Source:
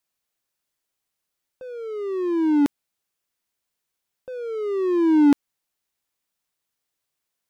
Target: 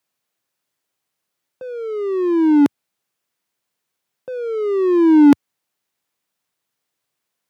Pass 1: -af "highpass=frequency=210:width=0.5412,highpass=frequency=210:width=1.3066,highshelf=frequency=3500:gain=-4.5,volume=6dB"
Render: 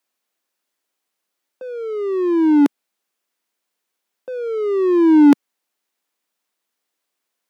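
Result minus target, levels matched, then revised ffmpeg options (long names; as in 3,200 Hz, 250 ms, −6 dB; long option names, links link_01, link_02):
125 Hz band −6.0 dB
-af "highpass=frequency=96:width=0.5412,highpass=frequency=96:width=1.3066,highshelf=frequency=3500:gain=-4.5,volume=6dB"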